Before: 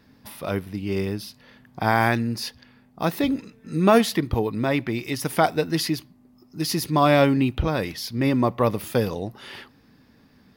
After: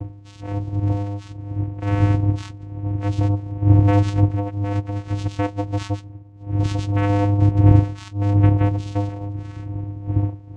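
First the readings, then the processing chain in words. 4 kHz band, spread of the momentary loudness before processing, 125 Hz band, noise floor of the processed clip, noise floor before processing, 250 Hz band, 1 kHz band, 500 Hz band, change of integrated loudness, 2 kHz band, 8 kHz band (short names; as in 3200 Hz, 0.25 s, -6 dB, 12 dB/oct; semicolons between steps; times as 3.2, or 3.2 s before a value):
-10.5 dB, 15 LU, +11.5 dB, -41 dBFS, -57 dBFS, 0.0 dB, -5.0 dB, -5.5 dB, +2.5 dB, -9.0 dB, under -10 dB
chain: nonlinear frequency compression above 2400 Hz 4:1; wind noise 180 Hz -22 dBFS; vocoder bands 4, square 101 Hz; gain +2 dB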